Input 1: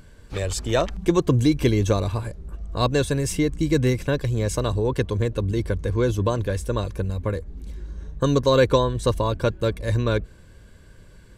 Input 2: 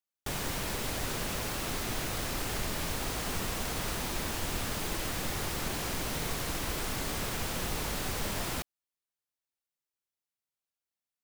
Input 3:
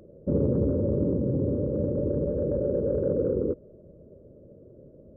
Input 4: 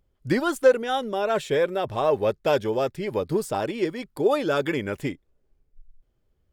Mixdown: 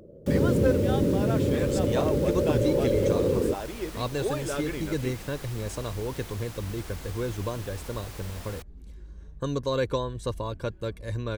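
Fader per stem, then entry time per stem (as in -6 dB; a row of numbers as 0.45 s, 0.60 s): -9.5 dB, -9.0 dB, +1.5 dB, -9.0 dB; 1.20 s, 0.00 s, 0.00 s, 0.00 s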